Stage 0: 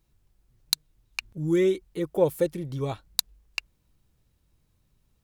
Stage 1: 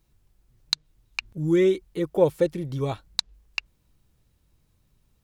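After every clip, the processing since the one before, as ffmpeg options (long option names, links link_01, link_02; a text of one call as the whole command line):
ffmpeg -i in.wav -filter_complex "[0:a]acrossover=split=6500[link_01][link_02];[link_02]acompressor=threshold=-56dB:ratio=4:attack=1:release=60[link_03];[link_01][link_03]amix=inputs=2:normalize=0,volume=2.5dB" out.wav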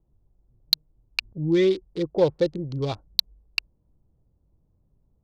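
ffmpeg -i in.wav -filter_complex "[0:a]acrossover=split=710|760[link_01][link_02][link_03];[link_03]aeval=exprs='val(0)*gte(abs(val(0)),0.0119)':channel_layout=same[link_04];[link_01][link_02][link_04]amix=inputs=3:normalize=0,lowpass=frequency=4500:width_type=q:width=3.6,asoftclip=type=tanh:threshold=-5.5dB" out.wav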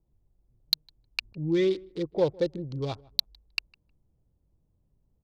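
ffmpeg -i in.wav -filter_complex "[0:a]asplit=2[link_01][link_02];[link_02]adelay=156,lowpass=frequency=1500:poles=1,volume=-24dB,asplit=2[link_03][link_04];[link_04]adelay=156,lowpass=frequency=1500:poles=1,volume=0.2[link_05];[link_01][link_03][link_05]amix=inputs=3:normalize=0,volume=-4.5dB" out.wav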